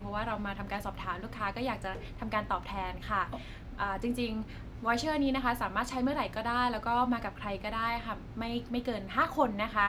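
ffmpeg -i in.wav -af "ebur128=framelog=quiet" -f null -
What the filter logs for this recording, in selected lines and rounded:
Integrated loudness:
  I:         -33.2 LUFS
  Threshold: -43.3 LUFS
Loudness range:
  LRA:         4.2 LU
  Threshold: -53.2 LUFS
  LRA low:   -35.7 LUFS
  LRA high:  -31.5 LUFS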